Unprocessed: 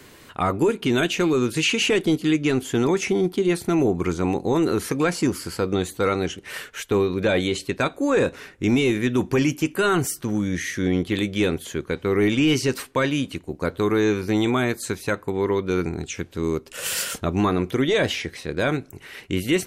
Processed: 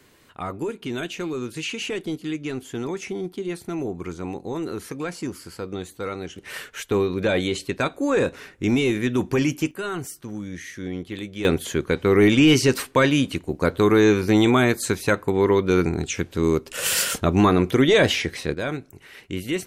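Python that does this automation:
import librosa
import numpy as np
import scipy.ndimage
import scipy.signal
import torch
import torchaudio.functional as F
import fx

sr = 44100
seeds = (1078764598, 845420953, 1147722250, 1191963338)

y = fx.gain(x, sr, db=fx.steps((0.0, -8.5), (6.36, -1.0), (9.71, -9.0), (11.45, 4.0), (18.54, -5.0)))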